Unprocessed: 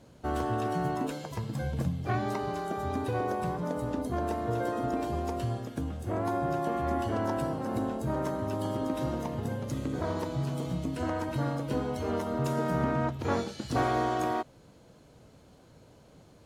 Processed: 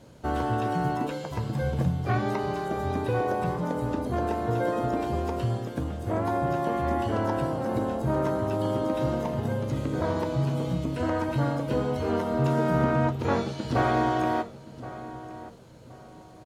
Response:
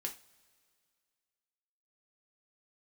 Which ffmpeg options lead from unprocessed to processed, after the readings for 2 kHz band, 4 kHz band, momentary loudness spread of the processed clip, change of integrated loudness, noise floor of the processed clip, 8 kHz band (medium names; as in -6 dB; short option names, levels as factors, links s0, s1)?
+4.5 dB, +3.0 dB, 7 LU, +4.0 dB, -48 dBFS, -1.0 dB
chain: -filter_complex "[0:a]asplit=2[s0][s1];[s1]adelay=1072,lowpass=f=2000:p=1,volume=0.178,asplit=2[s2][s3];[s3]adelay=1072,lowpass=f=2000:p=1,volume=0.31,asplit=2[s4][s5];[s5]adelay=1072,lowpass=f=2000:p=1,volume=0.31[s6];[s0][s2][s4][s6]amix=inputs=4:normalize=0,asplit=2[s7][s8];[1:a]atrim=start_sample=2205,asetrate=66150,aresample=44100[s9];[s8][s9]afir=irnorm=-1:irlink=0,volume=1.19[s10];[s7][s10]amix=inputs=2:normalize=0,acrossover=split=4300[s11][s12];[s12]acompressor=threshold=0.00251:ratio=4:attack=1:release=60[s13];[s11][s13]amix=inputs=2:normalize=0"